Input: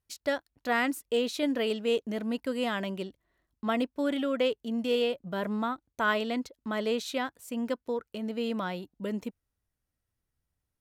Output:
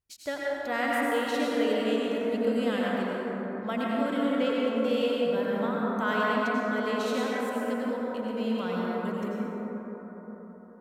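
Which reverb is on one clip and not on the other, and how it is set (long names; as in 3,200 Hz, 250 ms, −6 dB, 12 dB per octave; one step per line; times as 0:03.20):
dense smooth reverb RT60 4.7 s, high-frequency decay 0.25×, pre-delay 75 ms, DRR −6 dB
level −4.5 dB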